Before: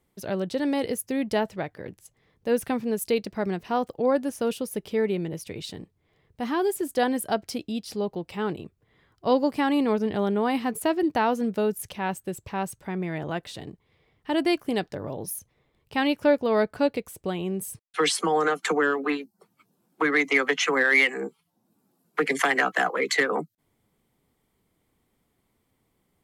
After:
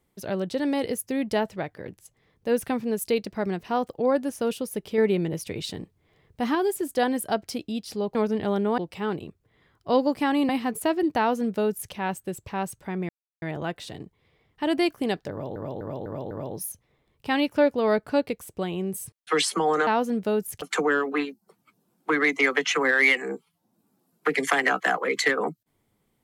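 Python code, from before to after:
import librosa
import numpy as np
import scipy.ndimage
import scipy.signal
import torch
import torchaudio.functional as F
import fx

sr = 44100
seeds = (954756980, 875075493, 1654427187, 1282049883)

y = fx.edit(x, sr, fx.clip_gain(start_s=4.98, length_s=1.57, db=3.5),
    fx.move(start_s=9.86, length_s=0.63, to_s=8.15),
    fx.duplicate(start_s=11.18, length_s=0.75, to_s=18.54),
    fx.insert_silence(at_s=13.09, length_s=0.33),
    fx.repeat(start_s=14.98, length_s=0.25, count=5), tone=tone)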